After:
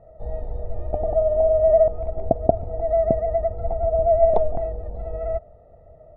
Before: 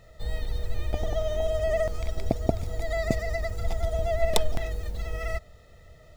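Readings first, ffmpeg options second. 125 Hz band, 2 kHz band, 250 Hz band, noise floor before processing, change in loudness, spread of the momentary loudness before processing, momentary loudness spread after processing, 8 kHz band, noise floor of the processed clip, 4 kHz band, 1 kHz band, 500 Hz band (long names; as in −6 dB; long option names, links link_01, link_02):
0.0 dB, below −15 dB, +1.0 dB, −52 dBFS, +8.5 dB, 8 LU, 16 LU, below −40 dB, −49 dBFS, below −25 dB, +10.0 dB, +11.0 dB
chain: -af "lowpass=frequency=690:width_type=q:width=3.8"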